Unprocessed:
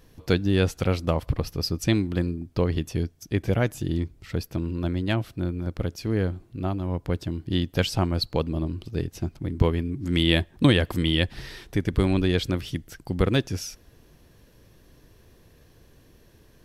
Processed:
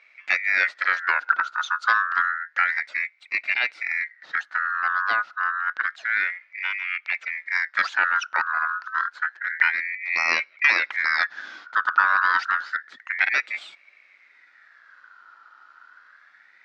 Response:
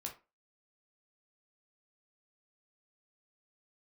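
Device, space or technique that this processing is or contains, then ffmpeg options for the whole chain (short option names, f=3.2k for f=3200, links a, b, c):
voice changer toy: -af "aeval=exprs='val(0)*sin(2*PI*1800*n/s+1800*0.25/0.29*sin(2*PI*0.29*n/s))':c=same,highpass=420,equalizer=f=430:t=q:w=4:g=-7,equalizer=f=1.4k:t=q:w=4:g=7,equalizer=f=3.1k:t=q:w=4:g=-4,lowpass=f=4.7k:w=0.5412,lowpass=f=4.7k:w=1.3066,volume=1.5dB"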